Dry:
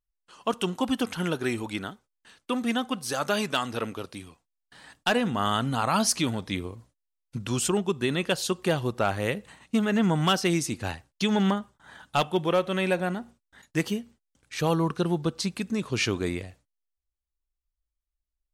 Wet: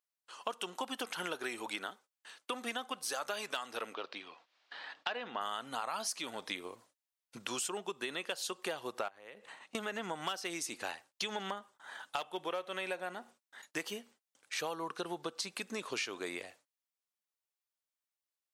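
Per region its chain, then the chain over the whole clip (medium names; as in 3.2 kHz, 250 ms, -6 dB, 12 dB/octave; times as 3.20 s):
3.94–5.41 s: low-pass 4.4 kHz 24 dB/octave + bass shelf 160 Hz -8.5 dB + upward compressor, threshold -40 dBFS
9.08–9.75 s: low-pass 3.5 kHz 6 dB/octave + compression 8:1, threshold -42 dBFS
whole clip: high-pass 530 Hz 12 dB/octave; compression 6:1, threshold -36 dBFS; trim +1 dB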